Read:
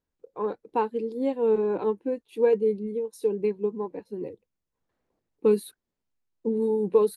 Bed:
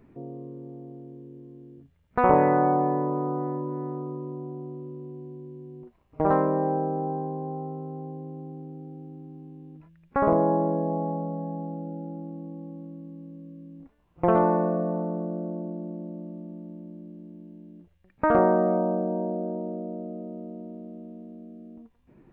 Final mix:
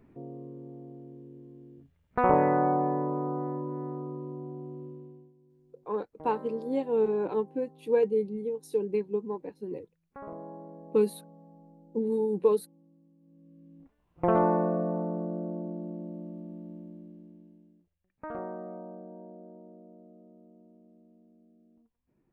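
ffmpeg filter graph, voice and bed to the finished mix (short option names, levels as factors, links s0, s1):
-filter_complex "[0:a]adelay=5500,volume=0.708[s0];[1:a]volume=5.62,afade=t=out:st=4.84:d=0.49:silence=0.133352,afade=t=in:st=13.2:d=1.24:silence=0.11885,afade=t=out:st=16.77:d=1.07:silence=0.16788[s1];[s0][s1]amix=inputs=2:normalize=0"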